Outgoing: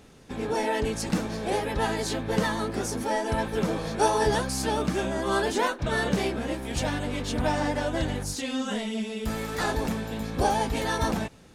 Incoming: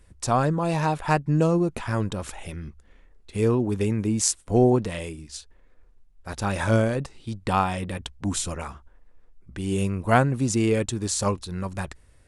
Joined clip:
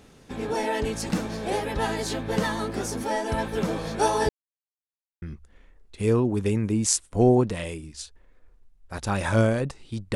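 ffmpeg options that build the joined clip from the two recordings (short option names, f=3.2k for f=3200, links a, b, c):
-filter_complex "[0:a]apad=whole_dur=10.15,atrim=end=10.15,asplit=2[a][b];[a]atrim=end=4.29,asetpts=PTS-STARTPTS,afade=t=out:st=4.286:d=0.004:c=hsin[c];[b]atrim=start=4.29:end=5.22,asetpts=PTS-STARTPTS,volume=0[d];[1:a]atrim=start=2.57:end=7.5,asetpts=PTS-STARTPTS,afade=t=in:d=0.004:c=hsin[e];[c][d][e]concat=n=3:v=0:a=1"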